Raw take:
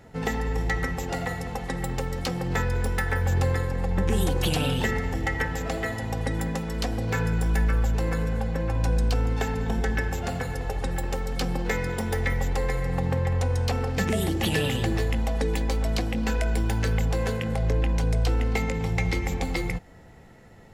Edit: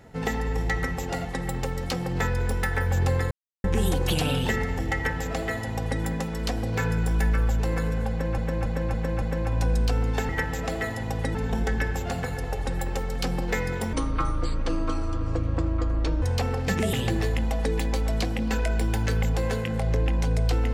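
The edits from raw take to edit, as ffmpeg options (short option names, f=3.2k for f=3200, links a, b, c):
-filter_complex "[0:a]asplit=13[a][b][c][d][e][f][g][h][i][j][k][l][m];[a]atrim=end=1.252[n];[b]atrim=start=1.598:end=3.66,asetpts=PTS-STARTPTS,afade=t=out:st=2.058:d=0.004:c=hsin[o];[c]atrim=start=3.66:end=3.99,asetpts=PTS-STARTPTS,volume=0[p];[d]atrim=start=3.99:end=8.732,asetpts=PTS-STARTPTS,afade=t=in:d=0.004:c=hsin[q];[e]atrim=start=8.448:end=8.732[r];[f]atrim=start=8.448:end=8.732[s];[g]atrim=start=8.448:end=8.732[t];[h]atrim=start=8.448:end=9.522[u];[i]atrim=start=5.308:end=6.372[v];[j]atrim=start=9.518:end=12.104[w];[k]atrim=start=12.1:end=13.52,asetpts=PTS-STARTPTS,asetrate=27342,aresample=44100,atrim=end_sample=101003,asetpts=PTS-STARTPTS[x];[l]atrim=start=13.516:end=14.232[y];[m]atrim=start=14.688[z];[o][p][q]concat=n=3:v=0:a=1[aa];[n][aa]acrossfade=d=0.004:c1=hsin:c2=hsin[ab];[ab][r]acrossfade=d=0.004:c1=hsin:c2=hsin[ac];[ac][s]acrossfade=d=0.004:c1=hsin:c2=hsin[ad];[ad][t]acrossfade=d=0.004:c1=hsin:c2=hsin[ae];[ae][u]acrossfade=d=0.004:c1=hsin:c2=hsin[af];[af][v]acrossfade=d=0.004:c1=hsin:c2=hsin[ag];[ag][w]acrossfade=d=0.004:c1=hsin:c2=hsin[ah];[ah][x]acrossfade=d=0.004:c1=hsin:c2=hsin[ai];[ai][y]acrossfade=d=0.004:c1=hsin:c2=hsin[aj];[aj][z]acrossfade=d=0.004:c1=hsin:c2=hsin"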